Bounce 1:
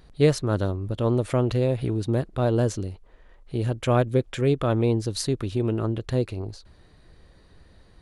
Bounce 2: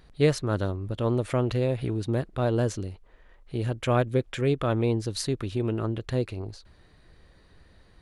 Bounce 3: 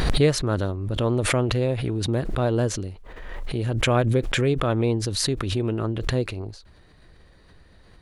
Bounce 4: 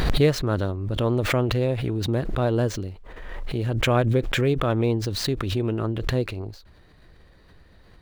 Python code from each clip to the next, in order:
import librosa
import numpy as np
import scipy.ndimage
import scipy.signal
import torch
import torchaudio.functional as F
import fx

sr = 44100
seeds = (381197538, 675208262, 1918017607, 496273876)

y1 = fx.peak_eq(x, sr, hz=2000.0, db=3.5, octaves=1.7)
y1 = y1 * librosa.db_to_amplitude(-3.0)
y2 = fx.pre_swell(y1, sr, db_per_s=32.0)
y2 = y2 * librosa.db_to_amplitude(2.0)
y3 = scipy.ndimage.median_filter(y2, 5, mode='constant')